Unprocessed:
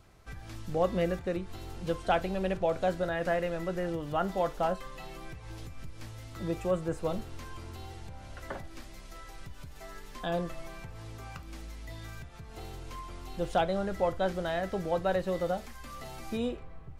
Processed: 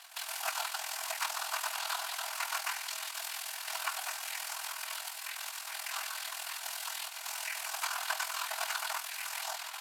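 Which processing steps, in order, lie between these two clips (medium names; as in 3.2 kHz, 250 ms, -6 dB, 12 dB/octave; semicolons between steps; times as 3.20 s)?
formants flattened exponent 0.3; in parallel at +2.5 dB: compressor with a negative ratio -41 dBFS, ratio -1; on the sum: AM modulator 24 Hz, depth 55%; noise-vocoded speech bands 8; pre-echo 300 ms -13.5 dB; on a send at -9.5 dB: reverberation RT60 0.45 s, pre-delay 3 ms; on the sum: speed mistake 45 rpm record played at 78 rpm; brick-wall FIR high-pass 620 Hz; tape noise reduction on one side only decoder only; trim -3 dB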